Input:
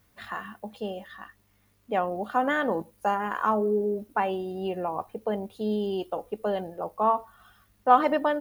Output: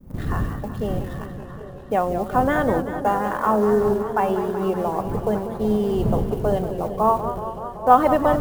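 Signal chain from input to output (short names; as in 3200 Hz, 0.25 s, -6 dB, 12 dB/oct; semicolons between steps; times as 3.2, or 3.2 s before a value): block floating point 7-bit; wind noise 170 Hz -38 dBFS; expander -41 dBFS; in parallel at -10 dB: bit-crush 6-bit; on the sum: bell 3200 Hz -8.5 dB 2.5 oct; on a send: delay with a stepping band-pass 0.394 s, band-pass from 200 Hz, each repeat 1.4 oct, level -8.5 dB; on the sum: warbling echo 0.189 s, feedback 77%, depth 129 cents, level -11 dB; gain +4.5 dB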